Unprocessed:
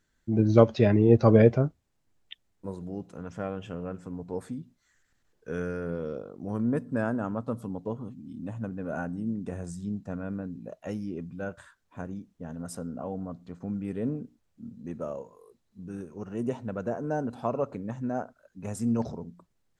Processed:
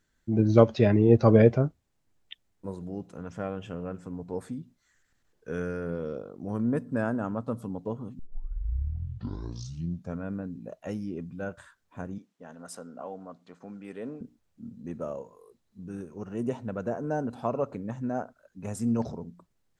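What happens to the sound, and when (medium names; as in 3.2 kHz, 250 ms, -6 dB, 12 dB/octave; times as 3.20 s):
8.19 s: tape start 2.04 s
12.18–14.21 s: frequency weighting A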